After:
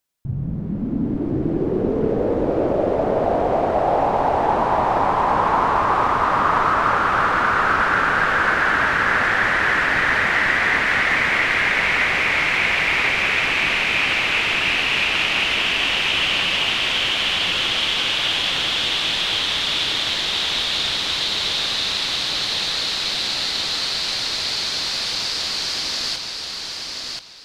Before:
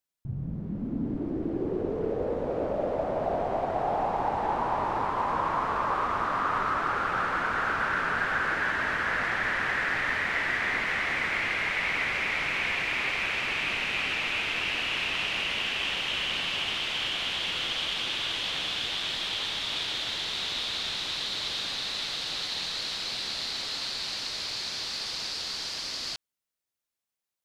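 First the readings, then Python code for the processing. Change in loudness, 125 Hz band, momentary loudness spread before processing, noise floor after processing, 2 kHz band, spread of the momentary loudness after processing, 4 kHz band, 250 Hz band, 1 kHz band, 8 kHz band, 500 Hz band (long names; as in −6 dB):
+10.0 dB, +10.0 dB, 5 LU, −29 dBFS, +10.0 dB, 5 LU, +10.0 dB, +10.0 dB, +10.0 dB, +10.0 dB, +10.0 dB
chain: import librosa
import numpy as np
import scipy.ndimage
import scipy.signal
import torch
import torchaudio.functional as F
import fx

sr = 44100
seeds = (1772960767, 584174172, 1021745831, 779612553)

y = fx.echo_feedback(x, sr, ms=1031, feedback_pct=22, wet_db=-4.0)
y = y * librosa.db_to_amplitude(8.5)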